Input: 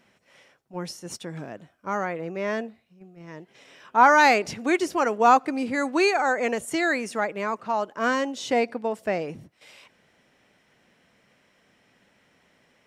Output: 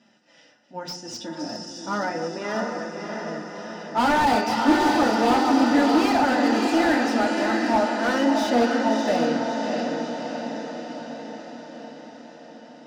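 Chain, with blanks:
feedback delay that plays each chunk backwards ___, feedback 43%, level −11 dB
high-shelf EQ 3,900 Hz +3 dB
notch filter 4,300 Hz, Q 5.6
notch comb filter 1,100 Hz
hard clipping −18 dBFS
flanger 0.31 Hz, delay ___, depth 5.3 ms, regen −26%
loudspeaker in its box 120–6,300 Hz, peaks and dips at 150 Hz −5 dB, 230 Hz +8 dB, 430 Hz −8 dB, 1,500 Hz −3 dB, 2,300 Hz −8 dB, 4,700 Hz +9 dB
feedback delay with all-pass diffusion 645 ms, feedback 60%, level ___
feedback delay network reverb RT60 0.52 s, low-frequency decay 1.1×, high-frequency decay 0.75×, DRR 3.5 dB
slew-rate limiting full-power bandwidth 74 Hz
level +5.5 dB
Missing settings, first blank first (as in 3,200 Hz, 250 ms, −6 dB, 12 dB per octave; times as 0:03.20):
142 ms, 4.9 ms, −4 dB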